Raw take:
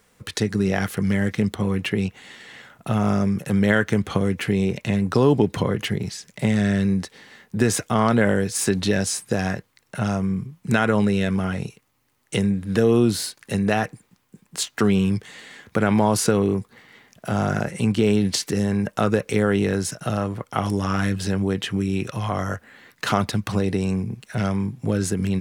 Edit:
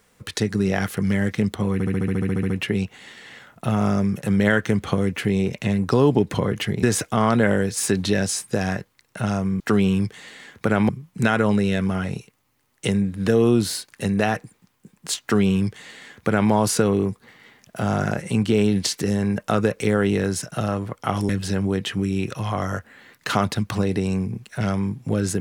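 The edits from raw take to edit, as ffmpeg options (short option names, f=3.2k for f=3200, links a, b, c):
-filter_complex "[0:a]asplit=16[a][b][c][d][e][f][g][h][i][j][k][l][m][n][o][p];[a]atrim=end=1.802[q];[b]atrim=start=1.728:end=1.802[r];[c]atrim=start=1.728:end=1.802[s];[d]atrim=start=1.728:end=1.802[t];[e]atrim=start=1.728:end=1.802[u];[f]atrim=start=1.728:end=1.802[v];[g]atrim=start=1.728:end=1.802[w];[h]atrim=start=1.728:end=1.802[x];[i]atrim=start=1.728:end=1.802[y];[j]atrim=start=1.728:end=1.802[z];[k]atrim=start=1.728:end=1.802[aa];[l]atrim=start=1.728:end=6.062[ab];[m]atrim=start=7.608:end=10.382[ac];[n]atrim=start=14.708:end=16.002[ad];[o]atrim=start=10.378:end=20.782[ae];[p]atrim=start=21.058[af];[q][r]acrossfade=d=0.004:c1=hsin:c2=hsin[ag];[ag][s]acrossfade=d=0.004:c1=hsin:c2=hsin[ah];[ah][t]acrossfade=d=0.004:c1=hsin:c2=hsin[ai];[ai][u]acrossfade=d=0.004:c1=hsin:c2=hsin[aj];[aj][v]acrossfade=d=0.004:c1=hsin:c2=hsin[ak];[ak][w]acrossfade=d=0.004:c1=hsin:c2=hsin[al];[al][x]acrossfade=d=0.004:c1=hsin:c2=hsin[am];[am][y]acrossfade=d=0.004:c1=hsin:c2=hsin[an];[an][z]acrossfade=d=0.004:c1=hsin:c2=hsin[ao];[ao][aa]acrossfade=d=0.004:c1=hsin:c2=hsin[ap];[ap][ab]acrossfade=d=0.004:c1=hsin:c2=hsin[aq];[aq][ac]acrossfade=d=0.004:c1=hsin:c2=hsin[ar];[ar][ad]acrossfade=d=0.004:c1=hsin:c2=hsin[as];[as][ae]acrossfade=d=0.004:c1=hsin:c2=hsin[at];[at][af]acrossfade=d=0.004:c1=hsin:c2=hsin"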